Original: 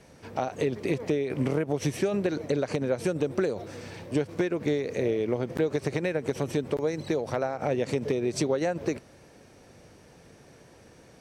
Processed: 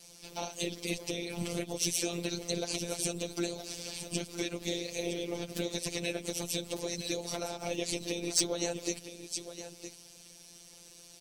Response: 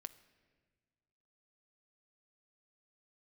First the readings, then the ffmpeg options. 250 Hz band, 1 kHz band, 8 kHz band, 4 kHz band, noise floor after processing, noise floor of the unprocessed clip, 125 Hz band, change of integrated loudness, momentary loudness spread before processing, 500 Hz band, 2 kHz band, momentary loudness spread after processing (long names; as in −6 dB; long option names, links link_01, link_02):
−8.0 dB, −8.5 dB, +10.0 dB, +7.5 dB, −55 dBFS, −54 dBFS, −9.5 dB, −6.0 dB, 4 LU, −10.0 dB, −4.0 dB, 17 LU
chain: -af "afftfilt=real='hypot(re,im)*cos(2*PI*random(0))':imag='hypot(re,im)*sin(2*PI*random(1))':win_size=512:overlap=0.75,aexciter=amount=7.1:drive=5.5:freq=2600,aecho=1:1:963:0.266,afftfilt=real='hypot(re,im)*cos(PI*b)':imag='0':win_size=1024:overlap=0.75,asoftclip=type=tanh:threshold=-9dB"